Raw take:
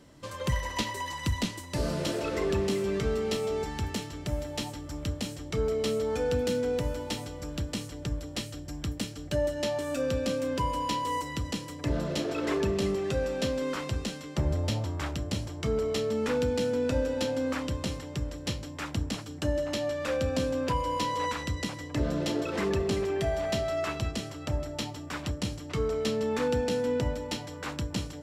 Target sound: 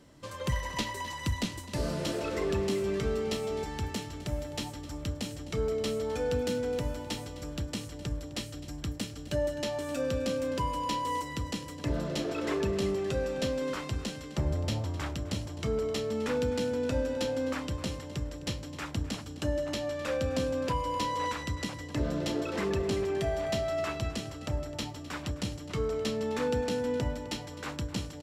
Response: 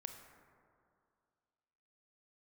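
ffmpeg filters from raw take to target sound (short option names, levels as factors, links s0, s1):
-af "aecho=1:1:258:0.15,volume=0.794"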